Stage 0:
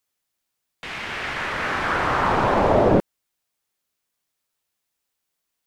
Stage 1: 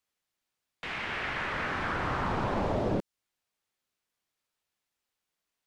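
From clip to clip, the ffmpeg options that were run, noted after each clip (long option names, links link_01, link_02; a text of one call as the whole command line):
ffmpeg -i in.wav -filter_complex "[0:a]highshelf=frequency=4500:gain=-9.5,acrossover=split=280|3500[link_01][link_02][link_03];[link_01]acompressor=threshold=-27dB:ratio=4[link_04];[link_02]acompressor=threshold=-29dB:ratio=4[link_05];[link_03]acompressor=threshold=-50dB:ratio=4[link_06];[link_04][link_05][link_06]amix=inputs=3:normalize=0,equalizer=frequency=5700:width=0.31:gain=3.5,volume=-3.5dB" out.wav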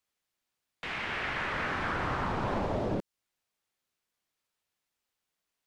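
ffmpeg -i in.wav -af "alimiter=limit=-21.5dB:level=0:latency=1:release=187" out.wav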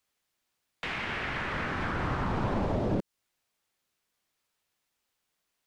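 ffmpeg -i in.wav -filter_complex "[0:a]acrossover=split=330[link_01][link_02];[link_02]acompressor=threshold=-36dB:ratio=6[link_03];[link_01][link_03]amix=inputs=2:normalize=0,volume=4.5dB" out.wav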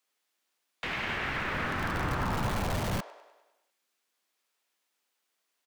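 ffmpeg -i in.wav -filter_complex "[0:a]acrossover=split=210|690[link_01][link_02][link_03];[link_01]acrusher=bits=7:mix=0:aa=0.000001[link_04];[link_02]aeval=exprs='(mod(39.8*val(0)+1,2)-1)/39.8':channel_layout=same[link_05];[link_03]aecho=1:1:100|200|300|400|500|600|700:0.447|0.246|0.135|0.0743|0.0409|0.0225|0.0124[link_06];[link_04][link_05][link_06]amix=inputs=3:normalize=0" out.wav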